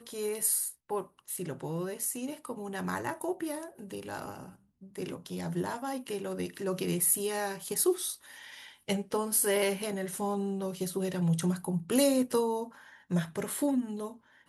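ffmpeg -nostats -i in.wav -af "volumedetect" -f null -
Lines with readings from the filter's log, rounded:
mean_volume: -32.7 dB
max_volume: -11.5 dB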